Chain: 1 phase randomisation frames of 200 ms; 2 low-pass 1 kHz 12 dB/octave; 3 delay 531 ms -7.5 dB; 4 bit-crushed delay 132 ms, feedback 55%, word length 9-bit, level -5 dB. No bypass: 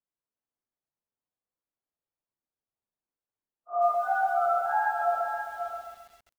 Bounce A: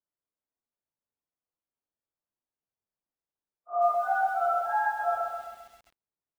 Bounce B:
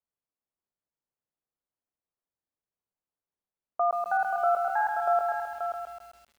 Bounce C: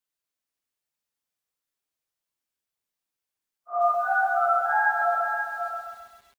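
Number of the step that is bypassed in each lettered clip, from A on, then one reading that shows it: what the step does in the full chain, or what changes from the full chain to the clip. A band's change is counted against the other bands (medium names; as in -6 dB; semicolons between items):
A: 3, momentary loudness spread change -2 LU; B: 1, momentary loudness spread change +3 LU; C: 2, loudness change +3.5 LU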